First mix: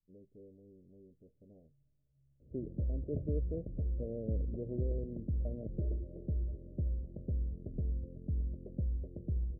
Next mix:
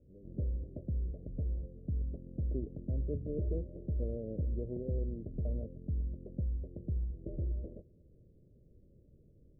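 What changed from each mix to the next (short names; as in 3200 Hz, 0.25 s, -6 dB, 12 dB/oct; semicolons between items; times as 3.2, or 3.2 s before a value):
background: entry -2.40 s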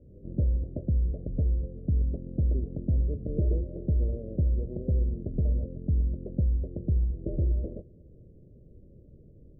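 background +9.5 dB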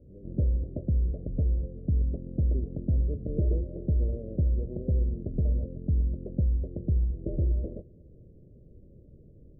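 first voice +6.0 dB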